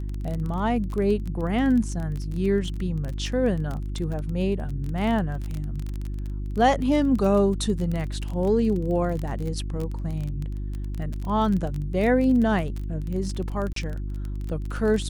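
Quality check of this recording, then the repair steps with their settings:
crackle 23/s -28 dBFS
hum 50 Hz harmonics 7 -30 dBFS
13.73–13.76 gap 33 ms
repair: de-click; de-hum 50 Hz, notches 7; interpolate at 13.73, 33 ms

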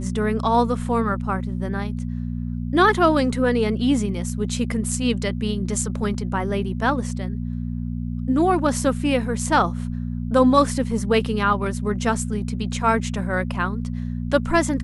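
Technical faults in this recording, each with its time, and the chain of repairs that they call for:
hum 60 Hz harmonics 4 -27 dBFS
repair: de-hum 60 Hz, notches 4

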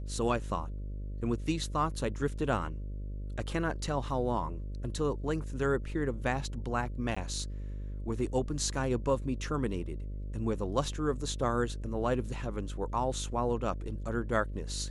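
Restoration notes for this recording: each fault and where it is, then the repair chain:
buzz 50 Hz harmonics 12 -38 dBFS
7.15–7.17 gap 15 ms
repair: de-hum 50 Hz, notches 12; interpolate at 7.15, 15 ms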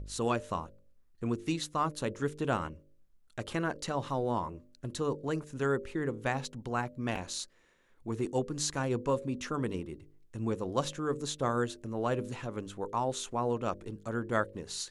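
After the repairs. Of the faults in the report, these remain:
none

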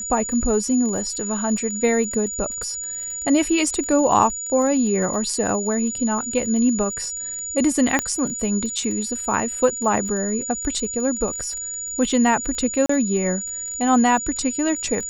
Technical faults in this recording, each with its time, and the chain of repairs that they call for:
crackle 23/s -29 dBFS
tone 6900 Hz -27 dBFS
2.63 gap 2.2 ms
7.99 pop -6 dBFS
12.86–12.89 gap 34 ms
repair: de-click; notch 6900 Hz, Q 30; interpolate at 2.63, 2.2 ms; interpolate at 12.86, 34 ms

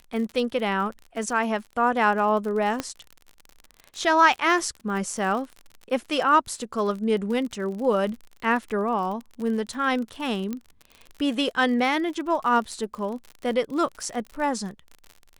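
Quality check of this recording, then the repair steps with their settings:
crackle 49/s -32 dBFS
2.8 pop -12 dBFS
10.53 pop -18 dBFS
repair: de-click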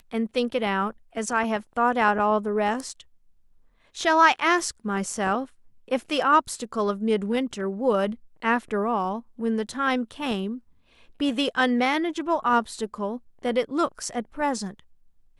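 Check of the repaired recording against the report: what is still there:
2.8 pop
10.53 pop

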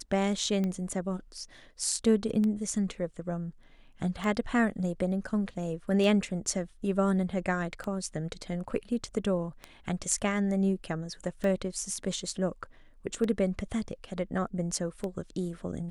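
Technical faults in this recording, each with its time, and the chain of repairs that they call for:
tick 33 1/3 rpm -21 dBFS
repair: de-click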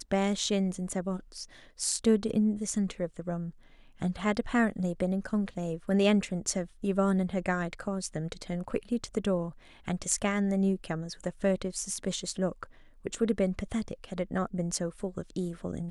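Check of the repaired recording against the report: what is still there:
none

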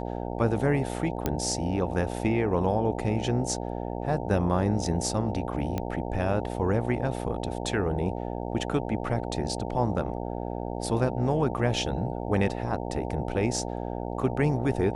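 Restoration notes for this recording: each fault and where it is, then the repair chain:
buzz 60 Hz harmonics 15 -33 dBFS
1.26 pop -11 dBFS
5.78 pop -16 dBFS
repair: de-click; de-hum 60 Hz, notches 15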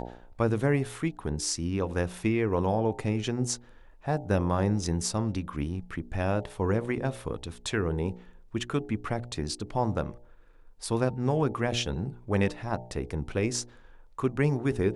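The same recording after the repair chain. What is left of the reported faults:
none

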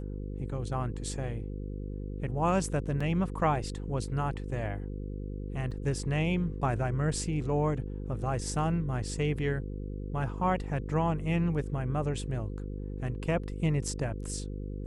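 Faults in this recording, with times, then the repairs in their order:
buzz 50 Hz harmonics 10 -37 dBFS
3–3.01 gap 5.3 ms
5.71 gap 4 ms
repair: de-hum 50 Hz, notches 10; interpolate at 3, 5.3 ms; interpolate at 5.71, 4 ms

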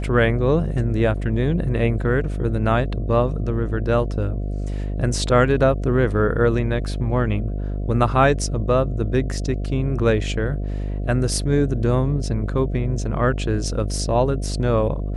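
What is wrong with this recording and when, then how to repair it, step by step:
buzz 50 Hz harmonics 14 -25 dBFS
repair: de-hum 50 Hz, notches 14

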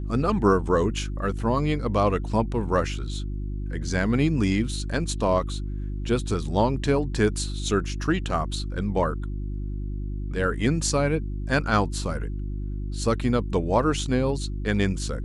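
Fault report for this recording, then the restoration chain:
hum 50 Hz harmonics 7 -30 dBFS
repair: de-hum 50 Hz, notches 7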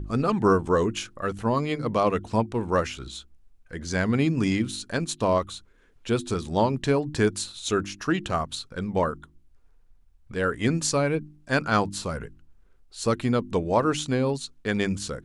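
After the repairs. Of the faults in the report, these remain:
none

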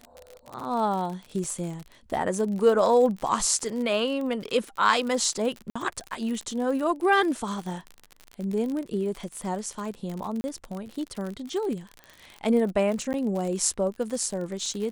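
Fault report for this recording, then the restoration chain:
crackle 53/s -31 dBFS
1.44 gap 3.4 ms
5.7–5.75 gap 55 ms
10.41–10.44 gap 30 ms
13.13–13.14 gap 9.2 ms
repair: de-click; interpolate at 1.44, 3.4 ms; interpolate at 5.7, 55 ms; interpolate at 10.41, 30 ms; interpolate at 13.13, 9.2 ms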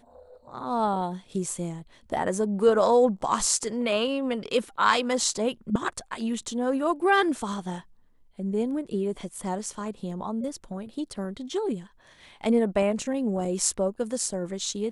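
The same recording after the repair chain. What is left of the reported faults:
none

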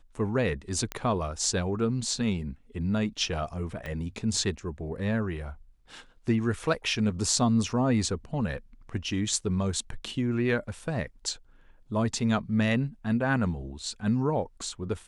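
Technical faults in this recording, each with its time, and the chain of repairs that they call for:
0.92 pop -16 dBFS
3.86 pop -23 dBFS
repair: de-click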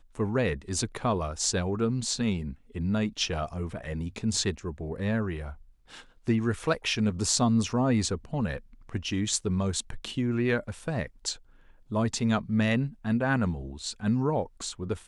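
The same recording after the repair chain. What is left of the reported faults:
3.86 pop

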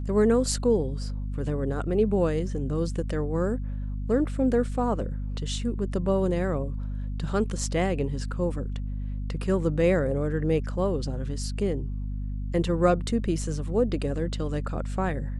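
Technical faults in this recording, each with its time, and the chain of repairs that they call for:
hum 50 Hz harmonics 5 -31 dBFS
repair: de-hum 50 Hz, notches 5

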